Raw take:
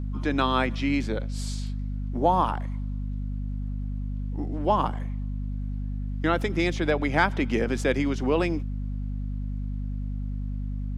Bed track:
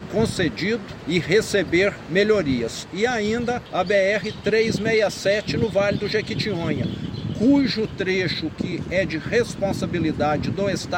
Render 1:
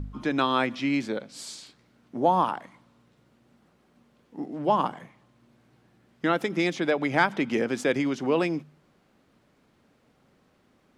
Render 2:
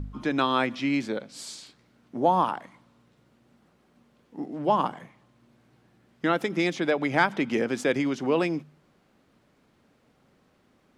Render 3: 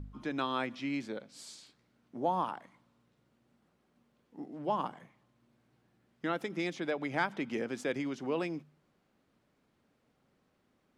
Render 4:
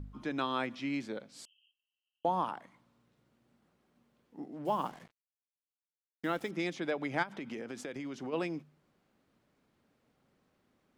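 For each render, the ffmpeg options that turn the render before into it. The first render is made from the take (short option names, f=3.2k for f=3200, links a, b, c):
-af "bandreject=f=50:t=h:w=4,bandreject=f=100:t=h:w=4,bandreject=f=150:t=h:w=4,bandreject=f=200:t=h:w=4,bandreject=f=250:t=h:w=4"
-af anull
-af "volume=-9.5dB"
-filter_complex "[0:a]asettb=1/sr,asplit=3[a][b][c];[a]atrim=end=1.454[d];[b]atrim=start=1.45:end=2.25,asetpts=PTS-STARTPTS,afade=t=in:d=0.004:c=qsin,afade=t=out:st=0.796:d=0.004:c=qsin,asuperpass=centerf=2900:order=12:qfactor=5.3[e];[c]atrim=start=2.246[f];[d][e]acrossfade=d=0.004:c1=hsin:c2=qsin[g];[g][f]acrossfade=d=0.004:c1=qsin:c2=hsin,asettb=1/sr,asplit=3[h][i][j];[h]atrim=end=4.654[k];[i]atrim=start=4.65:end=6.51,asetpts=PTS-STARTPTS,afade=t=in:d=0.004:c=qsin,afade=t=out:st=1.856:d=0.004:c=qsin,acrusher=bits=8:mix=0:aa=0.5[l];[j]atrim=start=6.506[m];[k][l]acrossfade=d=0.004:c1=hsin:c2=qsin[n];[n][m]acrossfade=d=0.004:c1=qsin:c2=hsin,asplit=3[o][p][q];[o]afade=t=out:st=7.22:d=0.02[r];[p]acompressor=threshold=-36dB:ratio=12:attack=3.2:release=140:knee=1:detection=peak,afade=t=in:st=7.22:d=0.02,afade=t=out:st=8.32:d=0.02[s];[q]afade=t=in:st=8.32:d=0.02[t];[r][s][t]amix=inputs=3:normalize=0"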